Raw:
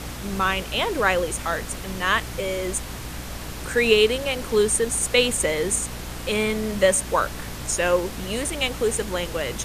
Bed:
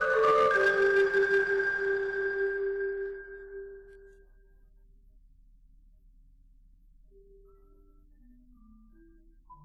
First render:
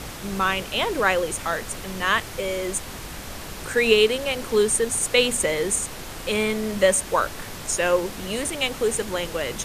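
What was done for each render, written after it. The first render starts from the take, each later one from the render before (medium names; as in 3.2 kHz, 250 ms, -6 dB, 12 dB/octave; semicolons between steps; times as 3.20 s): de-hum 60 Hz, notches 5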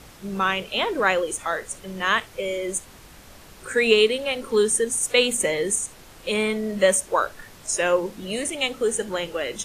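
noise print and reduce 11 dB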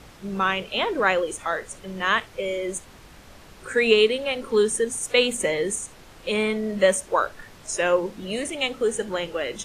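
treble shelf 7.3 kHz -9 dB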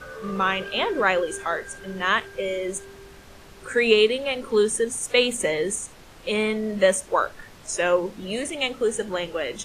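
add bed -13 dB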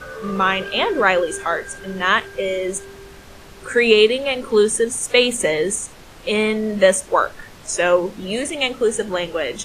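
trim +5 dB; peak limiter -1 dBFS, peak gain reduction 1.5 dB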